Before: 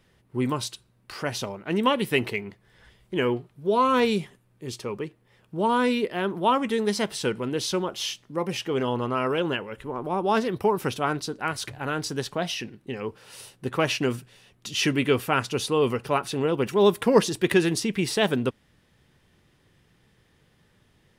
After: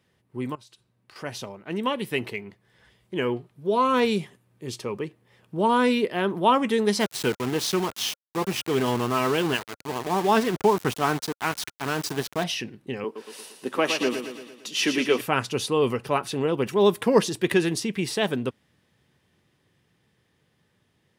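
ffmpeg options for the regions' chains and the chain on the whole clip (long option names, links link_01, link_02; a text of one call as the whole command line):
ffmpeg -i in.wav -filter_complex "[0:a]asettb=1/sr,asplit=3[link_01][link_02][link_03];[link_01]atrim=end=0.554[link_04];[link_02]atrim=start=0.55:end=1.16,asetpts=PTS-STARTPTS,afade=type=in:duration=0.004:curve=qsin,afade=type=out:start_time=0.606:duration=0.004:curve=qsin,highshelf=frequency=8000:gain=-5,acompressor=threshold=-43dB:ratio=12:attack=3.2:release=140:knee=1:detection=peak[link_05];[link_03]atrim=start=1.156[link_06];[link_04][link_05]acrossfade=duration=0.004:curve1=hsin:curve2=qsin[link_07];[link_07][link_06]acrossfade=duration=0.004:curve1=qsin:curve2=hsin,asettb=1/sr,asplit=3[link_08][link_09][link_10];[link_08]atrim=end=7.004[link_11];[link_09]atrim=start=7:end=12.44,asetpts=PTS-STARTPTS,afade=type=in:duration=0.004:curve=qsin,afade=type=out:start_time=5.436:duration=0.004:curve=qsin,aeval=exprs='val(0)*gte(abs(val(0)),0.0282)':channel_layout=same,bandreject=frequency=540:width=5.6[link_12];[link_10]atrim=start=12.436[link_13];[link_11][link_12]acrossfade=duration=0.004:curve1=hsin:curve2=qsin[link_14];[link_14][link_13]acrossfade=duration=0.004:curve1=qsin:curve2=hsin,asettb=1/sr,asplit=3[link_15][link_16][link_17];[link_15]atrim=end=13.044[link_18];[link_16]atrim=start=13.04:end=15.21,asetpts=PTS-STARTPTS,afade=type=in:duration=0.004:curve=qsin,afade=type=out:start_time=2.166:duration=0.004:curve=qsin,highpass=frequency=220:width=0.5412,highpass=frequency=220:width=1.3066,aecho=1:1:114|228|342|456|570|684|798:0.422|0.232|0.128|0.0702|0.0386|0.0212|0.0117,atrim=end_sample=95697[link_19];[link_17]atrim=start=15.206[link_20];[link_18][link_19]acrossfade=duration=0.004:curve1=hsin:curve2=qsin[link_21];[link_21][link_20]acrossfade=duration=0.004:curve1=qsin:curve2=hsin,highpass=84,bandreject=frequency=1400:width=22,dynaudnorm=framelen=530:gausssize=13:maxgain=11.5dB,volume=-5dB" out.wav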